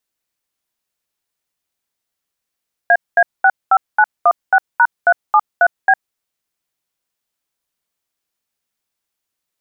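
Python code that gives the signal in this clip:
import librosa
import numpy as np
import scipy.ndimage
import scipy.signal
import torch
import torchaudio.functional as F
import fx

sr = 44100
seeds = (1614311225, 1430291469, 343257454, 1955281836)

y = fx.dtmf(sr, digits='AA65916#373B', tone_ms=57, gap_ms=214, level_db=-9.5)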